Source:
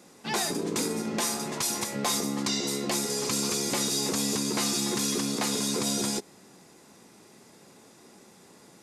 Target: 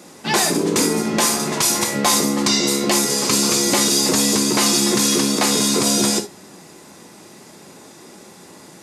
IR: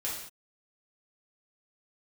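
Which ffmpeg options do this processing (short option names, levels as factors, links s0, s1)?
-filter_complex "[0:a]highpass=58,asplit=2[s0][s1];[1:a]atrim=start_sample=2205,atrim=end_sample=4410,asetrate=52920,aresample=44100[s2];[s1][s2]afir=irnorm=-1:irlink=0,volume=0.631[s3];[s0][s3]amix=inputs=2:normalize=0,volume=2.51"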